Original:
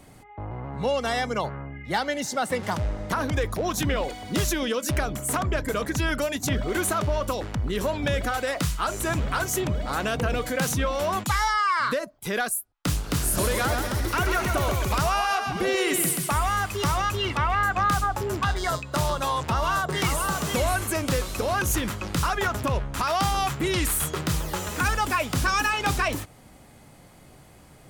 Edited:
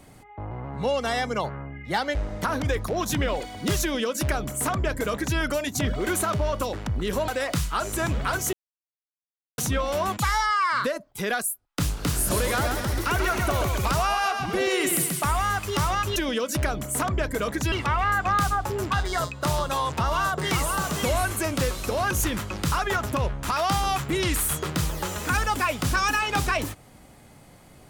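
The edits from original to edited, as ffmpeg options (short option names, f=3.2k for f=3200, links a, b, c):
-filter_complex "[0:a]asplit=7[a][b][c][d][e][f][g];[a]atrim=end=2.152[h];[b]atrim=start=2.828:end=7.962[i];[c]atrim=start=8.348:end=9.6,asetpts=PTS-STARTPTS,afade=t=out:st=1.248:d=0.004:c=hsin[j];[d]atrim=start=9.6:end=10.65,asetpts=PTS-STARTPTS,volume=0[k];[e]atrim=start=10.65:end=17.232,asetpts=PTS-STARTPTS,afade=t=in:d=0.004:c=hsin[l];[f]atrim=start=4.498:end=6.062[m];[g]atrim=start=17.228[n];[h][i]acrossfade=d=0.004:c1=hsin:c2=hsin[o];[j][k][l]concat=n=3:v=0:a=1[p];[o][p]acrossfade=d=0.004:c1=hsin:c2=hsin[q];[q][m]acrossfade=d=0.004:c1=hsin:c2=hsin[r];[r][n]acrossfade=d=0.004:c1=hsin:c2=hsin"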